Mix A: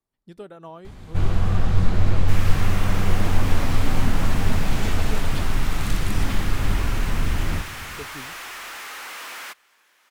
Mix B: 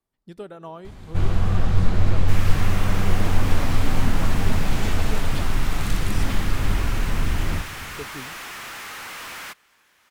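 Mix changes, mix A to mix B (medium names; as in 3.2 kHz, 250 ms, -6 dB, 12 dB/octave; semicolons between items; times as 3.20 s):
speech: send on; second sound: remove high-pass 330 Hz 12 dB/octave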